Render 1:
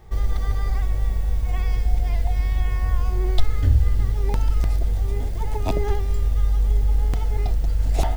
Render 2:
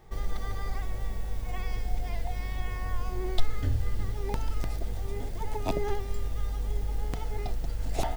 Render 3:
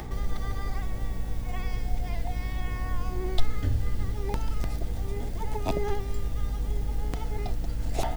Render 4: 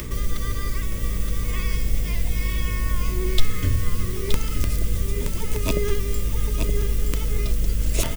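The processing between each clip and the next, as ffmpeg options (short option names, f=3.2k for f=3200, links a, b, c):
-af "equalizer=f=60:w=1.3:g=-12,volume=-4dB"
-af "acompressor=mode=upward:threshold=-29dB:ratio=2.5,aeval=exprs='val(0)+0.0126*(sin(2*PI*60*n/s)+sin(2*PI*2*60*n/s)/2+sin(2*PI*3*60*n/s)/3+sin(2*PI*4*60*n/s)/4+sin(2*PI*5*60*n/s)/5)':c=same,volume=1dB"
-af "aecho=1:1:922:0.501,aexciter=amount=2:drive=4.5:freq=2.3k,asuperstop=centerf=780:order=4:qfactor=2.2,volume=5dB"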